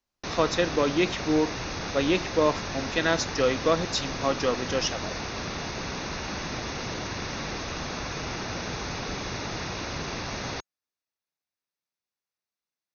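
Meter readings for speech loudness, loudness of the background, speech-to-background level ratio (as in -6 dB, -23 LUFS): -27.0 LUFS, -33.0 LUFS, 6.0 dB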